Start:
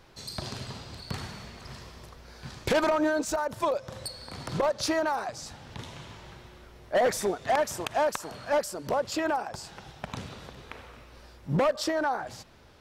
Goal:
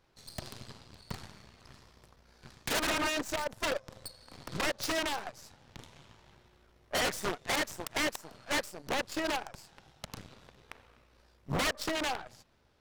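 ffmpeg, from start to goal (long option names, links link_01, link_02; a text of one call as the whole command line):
ffmpeg -i in.wav -af "aeval=exprs='0.106*(cos(1*acos(clip(val(0)/0.106,-1,1)))-cos(1*PI/2))+0.0299*(cos(3*acos(clip(val(0)/0.106,-1,1)))-cos(3*PI/2))+0.00335*(cos(8*acos(clip(val(0)/0.106,-1,1)))-cos(8*PI/2))':channel_layout=same,aeval=exprs='0.0473*(abs(mod(val(0)/0.0473+3,4)-2)-1)':channel_layout=same,volume=2.5dB" out.wav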